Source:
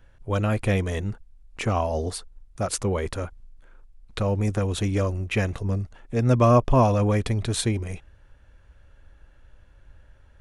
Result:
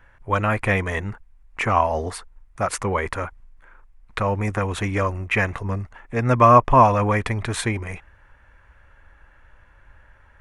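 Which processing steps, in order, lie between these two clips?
graphic EQ with 10 bands 1,000 Hz +10 dB, 2,000 Hz +11 dB, 4,000 Hz −4 dB
level −1 dB

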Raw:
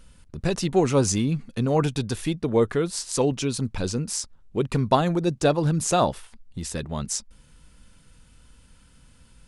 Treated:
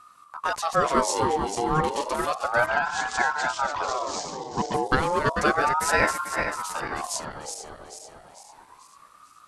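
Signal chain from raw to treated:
feedback delay that plays each chunk backwards 222 ms, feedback 68%, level −5.5 dB
0:02.66–0:04.74: Butterworth low-pass 6,700 Hz 48 dB per octave
ring modulator whose carrier an LFO sweeps 910 Hz, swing 35%, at 0.32 Hz

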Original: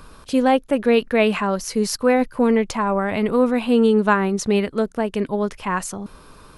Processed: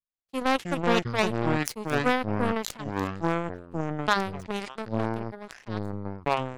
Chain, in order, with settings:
0:02.84–0:04.08: high-pass filter 1,300 Hz 24 dB per octave
power curve on the samples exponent 3
gain into a clipping stage and back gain 9 dB
delay with pitch and tempo change per echo 151 ms, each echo −7 semitones, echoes 2
level that may fall only so fast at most 83 dB per second

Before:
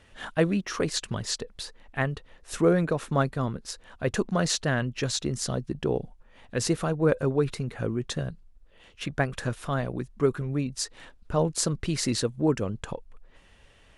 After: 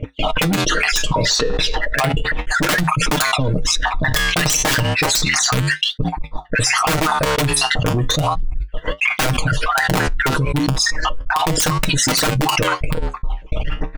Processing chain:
time-frequency cells dropped at random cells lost 54%
low-pass that shuts in the quiet parts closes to 1,800 Hz, open at −25.5 dBFS
noise gate −55 dBFS, range −33 dB
parametric band 270 Hz +4.5 dB 0.49 octaves
sine wavefolder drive 8 dB, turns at −11 dBFS
0:01.15–0:02.14: bass and treble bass −11 dB, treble −8 dB
phase shifter 1.3 Hz, delay 2.1 ms, feedback 64%
wrap-around overflow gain 9.5 dB
comb filter 6.5 ms, depth 71%
flanger 0.33 Hz, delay 8.6 ms, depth 7 ms, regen −64%
boost into a limiter +10 dB
envelope flattener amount 100%
level −11.5 dB

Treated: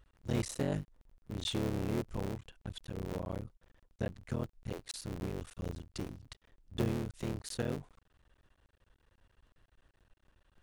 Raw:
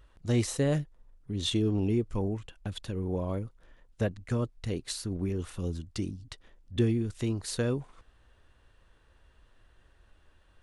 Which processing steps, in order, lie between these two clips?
sub-harmonics by changed cycles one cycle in 3, muted
level −5.5 dB

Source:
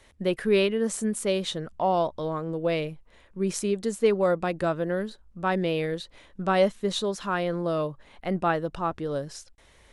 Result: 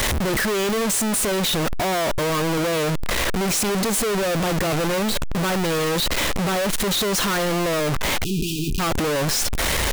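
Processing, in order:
sign of each sample alone
time-frequency box erased 0:08.24–0:08.80, 440–2,400 Hz
level +6 dB

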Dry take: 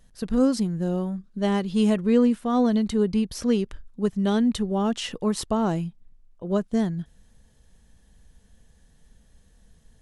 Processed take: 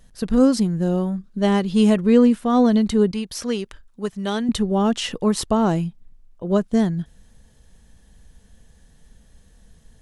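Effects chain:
0:03.11–0:04.49: low-shelf EQ 450 Hz −11 dB
level +5 dB

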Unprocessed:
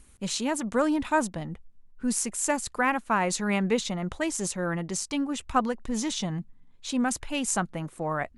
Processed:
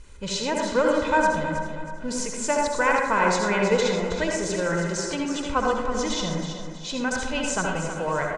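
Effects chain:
mu-law and A-law mismatch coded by mu
low-pass filter 7,000 Hz 24 dB per octave
comb filter 2 ms, depth 52%
repeating echo 320 ms, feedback 38%, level −9 dB
convolution reverb RT60 0.95 s, pre-delay 58 ms, DRR 0 dB

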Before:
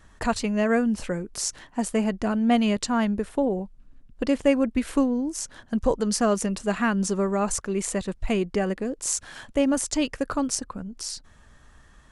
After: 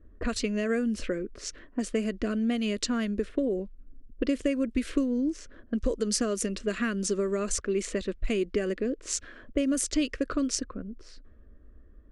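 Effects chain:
low-pass that shuts in the quiet parts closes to 540 Hz, open at −19.5 dBFS
downward compressor, threshold −24 dBFS, peak gain reduction 9.5 dB
phaser with its sweep stopped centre 350 Hz, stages 4
level +3 dB

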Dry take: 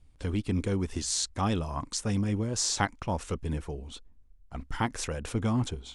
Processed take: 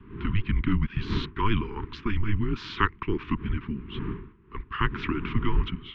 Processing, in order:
wind on the microphone 440 Hz −44 dBFS
single-sideband voice off tune −210 Hz 190–3,200 Hz
elliptic band-stop filter 400–1,000 Hz, stop band 50 dB
level +9 dB

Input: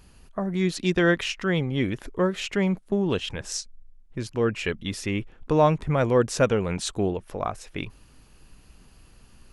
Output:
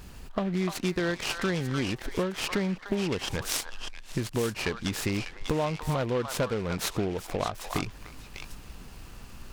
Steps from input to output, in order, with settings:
downward compressor 6 to 1, threshold −34 dBFS, peak gain reduction 18.5 dB
echo through a band-pass that steps 298 ms, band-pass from 1,100 Hz, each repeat 1.4 octaves, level −2 dB
short delay modulated by noise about 2,000 Hz, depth 0.039 ms
level +7.5 dB

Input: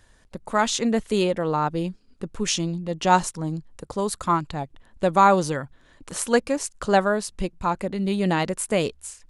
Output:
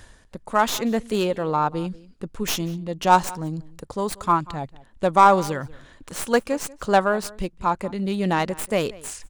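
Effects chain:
stylus tracing distortion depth 0.12 ms
dynamic equaliser 990 Hz, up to +4 dB, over −28 dBFS, Q 1.1
reversed playback
upward compression, threshold −27 dBFS
reversed playback
slap from a distant wall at 32 metres, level −21 dB
level −1 dB

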